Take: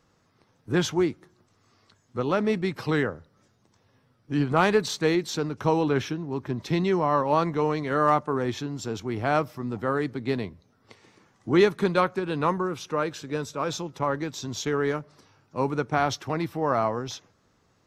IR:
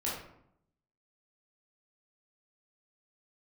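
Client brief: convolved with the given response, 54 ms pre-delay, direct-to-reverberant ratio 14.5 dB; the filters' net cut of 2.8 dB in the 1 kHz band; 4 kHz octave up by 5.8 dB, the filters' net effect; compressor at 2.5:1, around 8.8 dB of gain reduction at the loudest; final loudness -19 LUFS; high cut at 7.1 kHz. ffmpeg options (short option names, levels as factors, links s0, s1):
-filter_complex "[0:a]lowpass=7100,equalizer=f=1000:t=o:g=-4,equalizer=f=4000:t=o:g=7.5,acompressor=threshold=0.0398:ratio=2.5,asplit=2[s0][s1];[1:a]atrim=start_sample=2205,adelay=54[s2];[s1][s2]afir=irnorm=-1:irlink=0,volume=0.112[s3];[s0][s3]amix=inputs=2:normalize=0,volume=4.22"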